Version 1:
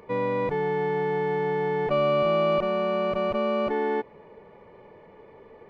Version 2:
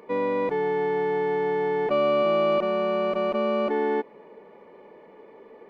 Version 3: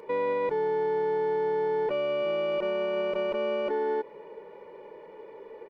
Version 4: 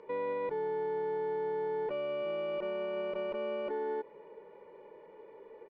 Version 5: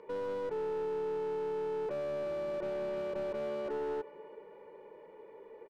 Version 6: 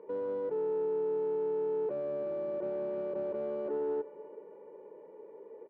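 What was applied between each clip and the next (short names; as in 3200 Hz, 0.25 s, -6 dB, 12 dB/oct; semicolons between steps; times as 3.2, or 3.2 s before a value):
resonant low shelf 160 Hz -14 dB, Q 1.5
comb 2.1 ms, depth 60%; limiter -21.5 dBFS, peak gain reduction 9 dB
air absorption 140 m; gain -6.5 dB
feedback echo 0.337 s, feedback 52%, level -20.5 dB; slew limiter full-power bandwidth 12 Hz
band-pass 360 Hz, Q 0.78; reverb, pre-delay 3 ms, DRR 19.5 dB; gain +3 dB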